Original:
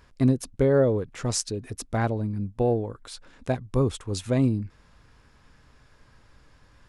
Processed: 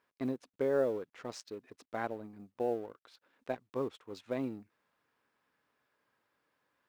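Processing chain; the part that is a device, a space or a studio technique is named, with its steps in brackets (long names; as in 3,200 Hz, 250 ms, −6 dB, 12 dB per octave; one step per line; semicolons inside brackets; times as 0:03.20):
phone line with mismatched companding (band-pass filter 320–3,400 Hz; mu-law and A-law mismatch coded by A)
level −7.5 dB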